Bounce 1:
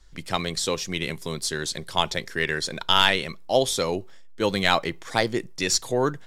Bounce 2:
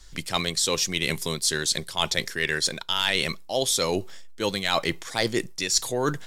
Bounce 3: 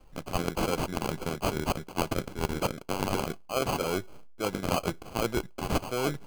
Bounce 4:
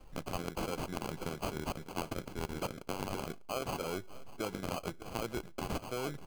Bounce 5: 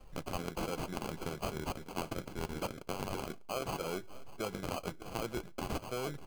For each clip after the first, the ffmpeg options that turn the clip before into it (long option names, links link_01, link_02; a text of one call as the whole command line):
ffmpeg -i in.wav -af "highshelf=frequency=2900:gain=9.5,areverse,acompressor=threshold=-25dB:ratio=6,areverse,volume=4dB" out.wav
ffmpeg -i in.wav -filter_complex "[0:a]asplit=2[link_01][link_02];[link_02]aeval=exprs='sgn(val(0))*max(abs(val(0))-0.0141,0)':channel_layout=same,volume=-6.5dB[link_03];[link_01][link_03]amix=inputs=2:normalize=0,acrusher=samples=24:mix=1:aa=0.000001,volume=-7dB" out.wav
ffmpeg -i in.wav -af "acompressor=threshold=-36dB:ratio=4,aecho=1:1:598:0.119,volume=1dB" out.wav
ffmpeg -i in.wav -af "flanger=delay=1.6:depth=4.6:regen=-72:speed=0.67:shape=sinusoidal,volume=4dB" out.wav